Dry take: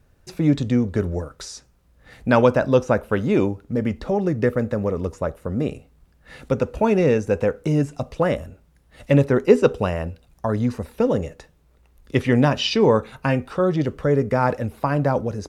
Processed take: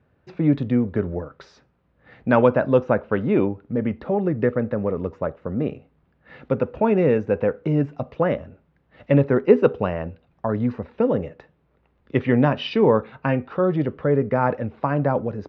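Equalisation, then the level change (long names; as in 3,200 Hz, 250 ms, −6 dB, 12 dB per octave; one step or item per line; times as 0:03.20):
band-pass filter 110–2,900 Hz
high-frequency loss of the air 160 metres
0.0 dB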